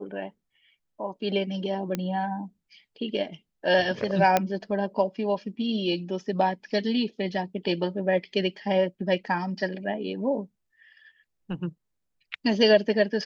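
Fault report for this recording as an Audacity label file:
1.950000	1.950000	click −14 dBFS
4.370000	4.370000	click −7 dBFS

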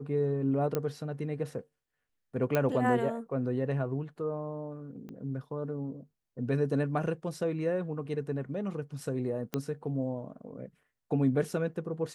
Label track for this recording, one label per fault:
0.750000	0.750000	click −16 dBFS
2.550000	2.550000	click −14 dBFS
5.090000	5.090000	click −33 dBFS
9.540000	9.540000	click −17 dBFS

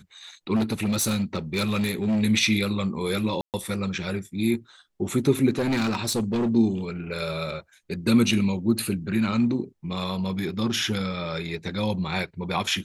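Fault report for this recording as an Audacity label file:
0.550000	2.230000	clipping −20 dBFS
3.410000	3.540000	drop-out 128 ms
5.580000	6.500000	clipping −20.5 dBFS

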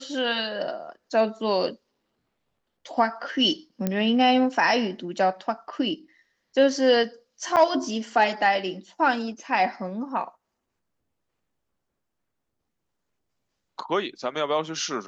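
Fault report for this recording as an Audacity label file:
3.870000	3.870000	click −12 dBFS
7.560000	7.570000	drop-out 8.1 ms

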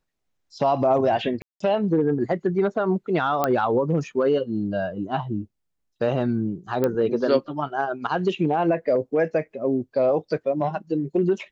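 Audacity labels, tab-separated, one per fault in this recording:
1.420000	1.600000	drop-out 184 ms
3.440000	3.440000	click −8 dBFS
6.840000	6.840000	click −11 dBFS

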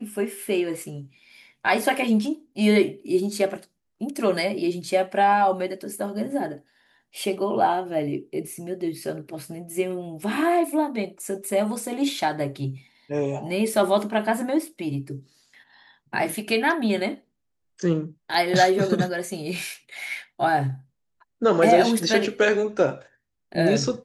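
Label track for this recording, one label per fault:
18.340000	18.340000	drop-out 2.8 ms

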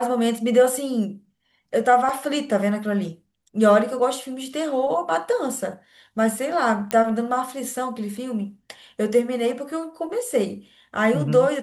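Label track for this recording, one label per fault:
2.090000	2.090000	drop-out 3 ms
6.910000	6.910000	click −8 dBFS

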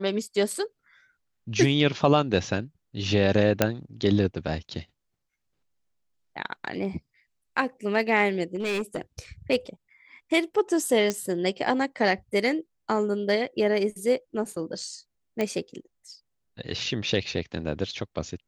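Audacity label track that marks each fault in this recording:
3.620000	3.620000	click −4 dBFS
8.560000	9.010000	clipping −24 dBFS
11.100000	11.100000	click −12 dBFS
15.410000	15.410000	click −14 dBFS

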